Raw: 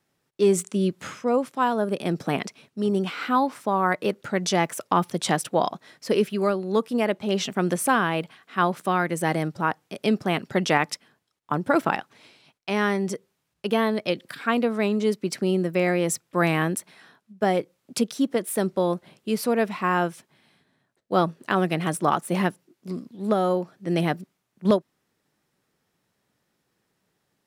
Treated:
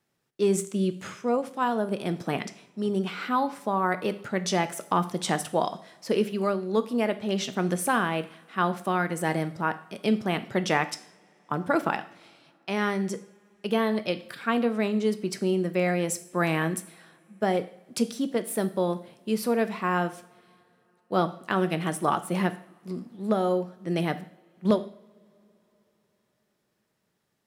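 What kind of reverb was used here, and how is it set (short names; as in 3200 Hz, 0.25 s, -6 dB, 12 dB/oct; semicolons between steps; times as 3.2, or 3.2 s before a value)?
two-slope reverb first 0.54 s, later 4.1 s, from -27 dB, DRR 10 dB; gain -3.5 dB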